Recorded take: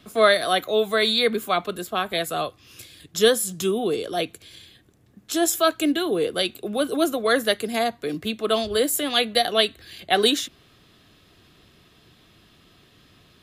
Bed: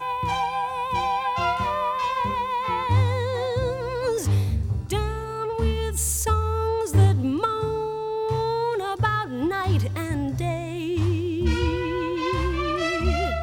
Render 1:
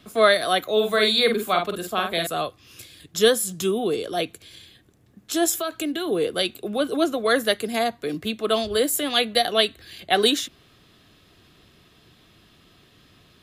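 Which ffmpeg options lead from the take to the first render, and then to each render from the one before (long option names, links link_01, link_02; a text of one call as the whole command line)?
ffmpeg -i in.wav -filter_complex "[0:a]asettb=1/sr,asplit=3[link_01][link_02][link_03];[link_01]atrim=end=0.724[link_04];[link_02]atrim=start=0.72:end=2.27,asetpts=PTS-STARTPTS,afade=type=in:duration=0.004:curve=qsin,afade=type=out:start_time=1.546:duration=0.004:curve=qsin,asplit=2[link_05][link_06];[link_06]adelay=47,volume=-5dB[link_07];[link_05][link_07]amix=inputs=2:normalize=0,atrim=end_sample=68355[link_08];[link_03]atrim=start=2.266[link_09];[link_04][link_08]acrossfade=duration=0.004:curve1=hsin:curve2=qsin[link_10];[link_10][link_09]acrossfade=duration=0.004:curve1=qsin:curve2=hsin,asettb=1/sr,asplit=3[link_11][link_12][link_13];[link_11]atrim=end=5.544[link_14];[link_12]atrim=start=5.54:end=6.08,asetpts=PTS-STARTPTS,afade=type=in:duration=0.004:curve=qsin,afade=type=out:start_time=0.536:duration=0.004:curve=qsin,acompressor=threshold=-23dB:ratio=6:attack=3.2:release=140:knee=1:detection=peak[link_15];[link_13]atrim=start=6.076[link_16];[link_14][link_15]acrossfade=duration=0.004:curve1=hsin:curve2=qsin[link_17];[link_17][link_16]acrossfade=duration=0.004:curve1=qsin:curve2=hsin,asettb=1/sr,asplit=3[link_18][link_19][link_20];[link_18]atrim=end=6.714[link_21];[link_19]atrim=start=6.71:end=7.21,asetpts=PTS-STARTPTS,afade=type=in:duration=0.004:curve=qsin,afade=type=out:start_time=0.496:duration=0.004:curve=qsin,acrossover=split=6900[link_22][link_23];[link_23]acompressor=threshold=-46dB:ratio=4:attack=1:release=60[link_24];[link_22][link_24]amix=inputs=2:normalize=0[link_25];[link_20]atrim=start=7.206[link_26];[link_21][link_25]acrossfade=duration=0.004:curve1=hsin:curve2=qsin[link_27];[link_27][link_26]acrossfade=duration=0.004:curve1=qsin:curve2=hsin" out.wav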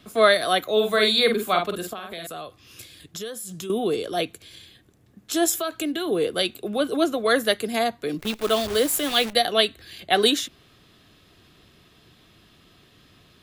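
ffmpeg -i in.wav -filter_complex "[0:a]asettb=1/sr,asplit=3[link_01][link_02][link_03];[link_01]atrim=end=1.934[link_04];[link_02]atrim=start=1.93:end=3.7,asetpts=PTS-STARTPTS,afade=type=in:duration=0.004:curve=qsin,afade=type=out:start_time=1.766:duration=0.004:curve=qsin,acompressor=threshold=-32dB:ratio=5:attack=3.2:release=140:knee=1:detection=peak[link_05];[link_03]atrim=start=3.696[link_06];[link_04][link_05]acrossfade=duration=0.004:curve1=hsin:curve2=qsin[link_07];[link_07][link_06]acrossfade=duration=0.004:curve1=qsin:curve2=hsin,asplit=3[link_08][link_09][link_10];[link_08]afade=type=out:start_time=8.18:duration=0.02[link_11];[link_09]acrusher=bits=6:dc=4:mix=0:aa=0.000001,afade=type=in:start_time=8.18:duration=0.02,afade=type=out:start_time=9.32:duration=0.02[link_12];[link_10]afade=type=in:start_time=9.32:duration=0.02[link_13];[link_11][link_12][link_13]amix=inputs=3:normalize=0" out.wav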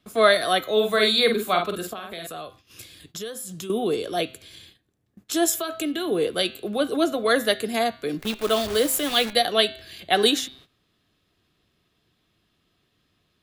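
ffmpeg -i in.wav -af "bandreject=frequency=129.8:width_type=h:width=4,bandreject=frequency=259.6:width_type=h:width=4,bandreject=frequency=389.4:width_type=h:width=4,bandreject=frequency=519.2:width_type=h:width=4,bandreject=frequency=649:width_type=h:width=4,bandreject=frequency=778.8:width_type=h:width=4,bandreject=frequency=908.6:width_type=h:width=4,bandreject=frequency=1038.4:width_type=h:width=4,bandreject=frequency=1168.2:width_type=h:width=4,bandreject=frequency=1298:width_type=h:width=4,bandreject=frequency=1427.8:width_type=h:width=4,bandreject=frequency=1557.6:width_type=h:width=4,bandreject=frequency=1687.4:width_type=h:width=4,bandreject=frequency=1817.2:width_type=h:width=4,bandreject=frequency=1947:width_type=h:width=4,bandreject=frequency=2076.8:width_type=h:width=4,bandreject=frequency=2206.6:width_type=h:width=4,bandreject=frequency=2336.4:width_type=h:width=4,bandreject=frequency=2466.2:width_type=h:width=4,bandreject=frequency=2596:width_type=h:width=4,bandreject=frequency=2725.8:width_type=h:width=4,bandreject=frequency=2855.6:width_type=h:width=4,bandreject=frequency=2985.4:width_type=h:width=4,bandreject=frequency=3115.2:width_type=h:width=4,bandreject=frequency=3245:width_type=h:width=4,bandreject=frequency=3374.8:width_type=h:width=4,bandreject=frequency=3504.6:width_type=h:width=4,bandreject=frequency=3634.4:width_type=h:width=4,bandreject=frequency=3764.2:width_type=h:width=4,bandreject=frequency=3894:width_type=h:width=4,bandreject=frequency=4023.8:width_type=h:width=4,bandreject=frequency=4153.6:width_type=h:width=4,bandreject=frequency=4283.4:width_type=h:width=4,bandreject=frequency=4413.2:width_type=h:width=4,bandreject=frequency=4543:width_type=h:width=4,bandreject=frequency=4672.8:width_type=h:width=4,agate=range=-14dB:threshold=-49dB:ratio=16:detection=peak" out.wav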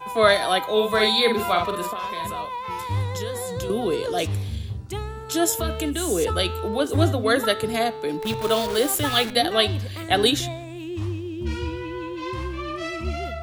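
ffmpeg -i in.wav -i bed.wav -filter_complex "[1:a]volume=-5.5dB[link_01];[0:a][link_01]amix=inputs=2:normalize=0" out.wav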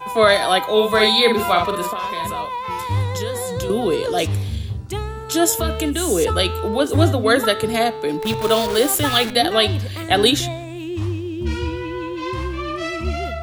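ffmpeg -i in.wav -af "volume=4.5dB,alimiter=limit=-3dB:level=0:latency=1" out.wav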